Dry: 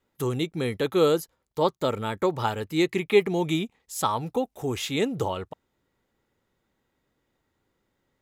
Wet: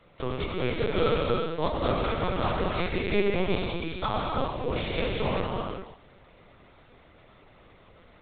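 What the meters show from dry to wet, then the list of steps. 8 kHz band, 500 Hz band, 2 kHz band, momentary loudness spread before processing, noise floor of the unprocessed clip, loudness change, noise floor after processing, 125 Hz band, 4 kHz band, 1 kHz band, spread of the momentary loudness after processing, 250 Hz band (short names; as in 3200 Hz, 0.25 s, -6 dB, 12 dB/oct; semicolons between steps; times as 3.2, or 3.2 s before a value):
under -40 dB, -3.0 dB, +0.5 dB, 8 LU, -77 dBFS, -2.5 dB, -56 dBFS, 0.0 dB, -1.5 dB, -1.0 dB, 7 LU, -3.5 dB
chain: per-bin compression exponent 0.6; HPF 390 Hz 6 dB/oct; non-linear reverb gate 0.43 s flat, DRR -3 dB; LPC vocoder at 8 kHz pitch kept; gain -6.5 dB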